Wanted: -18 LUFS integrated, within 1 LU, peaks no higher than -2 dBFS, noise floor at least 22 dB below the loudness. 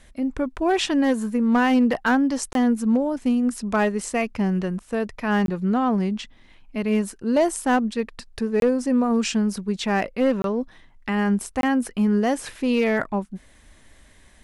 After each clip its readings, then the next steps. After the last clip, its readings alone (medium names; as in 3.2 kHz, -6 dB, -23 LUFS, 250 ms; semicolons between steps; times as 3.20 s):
clipped samples 0.5%; clipping level -13.0 dBFS; dropouts 5; longest dropout 22 ms; loudness -22.5 LUFS; peak level -13.0 dBFS; loudness target -18.0 LUFS
-> clip repair -13 dBFS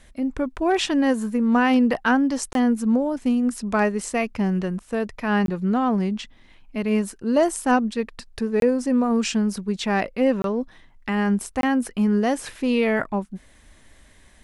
clipped samples 0.0%; dropouts 5; longest dropout 22 ms
-> interpolate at 2.53/5.46/8.60/10.42/11.61 s, 22 ms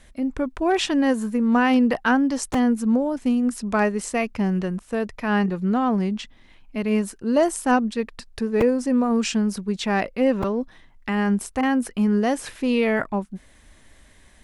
dropouts 0; loudness -22.5 LUFS; peak level -7.0 dBFS; loudness target -18.0 LUFS
-> trim +4.5 dB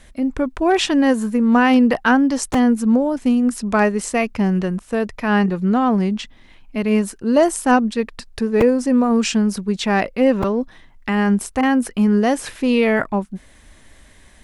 loudness -18.0 LUFS; peak level -2.5 dBFS; noise floor -48 dBFS